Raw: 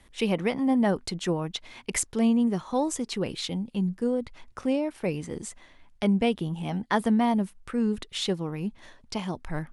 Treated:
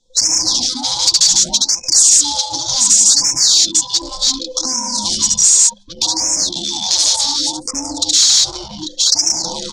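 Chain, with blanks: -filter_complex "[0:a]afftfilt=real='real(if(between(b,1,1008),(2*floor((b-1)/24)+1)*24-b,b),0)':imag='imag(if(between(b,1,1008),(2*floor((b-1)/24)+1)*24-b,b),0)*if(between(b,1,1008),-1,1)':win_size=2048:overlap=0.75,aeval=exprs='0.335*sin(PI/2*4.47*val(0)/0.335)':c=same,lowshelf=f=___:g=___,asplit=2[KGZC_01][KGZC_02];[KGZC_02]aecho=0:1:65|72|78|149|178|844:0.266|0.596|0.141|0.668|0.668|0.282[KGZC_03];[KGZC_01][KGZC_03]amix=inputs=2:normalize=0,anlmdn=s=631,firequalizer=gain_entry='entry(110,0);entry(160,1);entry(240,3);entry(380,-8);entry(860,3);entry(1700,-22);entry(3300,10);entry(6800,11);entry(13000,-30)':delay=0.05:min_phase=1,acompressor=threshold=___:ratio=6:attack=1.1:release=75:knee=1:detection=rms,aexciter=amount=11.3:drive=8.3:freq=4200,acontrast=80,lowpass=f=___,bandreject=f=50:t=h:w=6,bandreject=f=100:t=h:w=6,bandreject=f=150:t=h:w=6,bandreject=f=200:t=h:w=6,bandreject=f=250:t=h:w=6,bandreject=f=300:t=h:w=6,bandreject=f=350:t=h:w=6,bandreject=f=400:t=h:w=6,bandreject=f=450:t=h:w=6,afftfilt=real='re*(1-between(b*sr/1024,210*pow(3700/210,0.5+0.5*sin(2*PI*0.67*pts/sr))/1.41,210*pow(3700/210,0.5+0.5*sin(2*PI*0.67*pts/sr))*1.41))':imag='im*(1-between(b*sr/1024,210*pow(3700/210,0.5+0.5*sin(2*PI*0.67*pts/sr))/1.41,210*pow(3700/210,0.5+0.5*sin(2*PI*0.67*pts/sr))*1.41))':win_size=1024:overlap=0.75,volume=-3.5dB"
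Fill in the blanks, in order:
400, -10, -26dB, 8300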